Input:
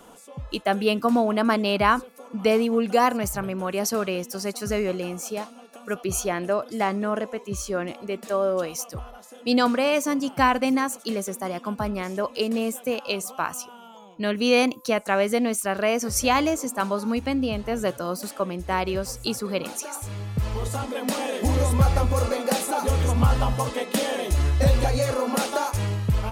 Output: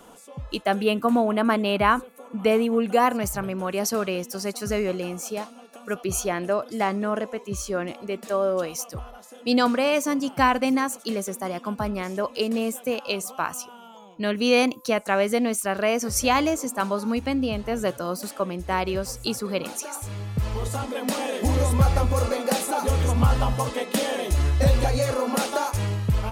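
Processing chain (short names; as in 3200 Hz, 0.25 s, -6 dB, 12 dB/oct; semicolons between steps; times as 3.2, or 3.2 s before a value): 0.83–3.12 bell 5100 Hz -13 dB 0.41 oct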